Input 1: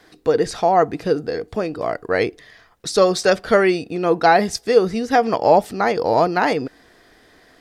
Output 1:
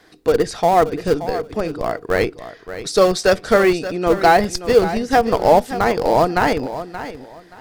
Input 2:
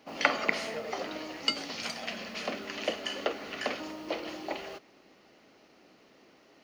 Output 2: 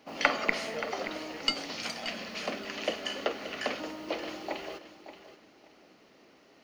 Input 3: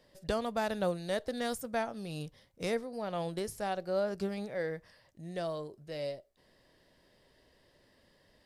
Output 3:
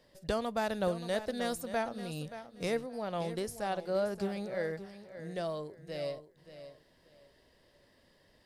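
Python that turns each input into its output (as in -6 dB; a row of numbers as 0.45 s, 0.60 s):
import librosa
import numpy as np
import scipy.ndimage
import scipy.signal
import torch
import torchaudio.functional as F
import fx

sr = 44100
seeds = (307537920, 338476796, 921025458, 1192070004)

p1 = fx.schmitt(x, sr, flips_db=-13.5)
p2 = x + (p1 * librosa.db_to_amplitude(-6.5))
y = fx.echo_feedback(p2, sr, ms=577, feedback_pct=22, wet_db=-12.5)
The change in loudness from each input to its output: +1.0 LU, 0.0 LU, 0.0 LU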